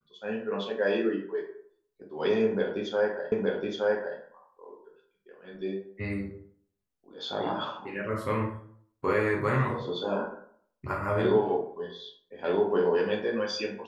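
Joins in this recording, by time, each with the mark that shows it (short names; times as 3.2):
3.32 repeat of the last 0.87 s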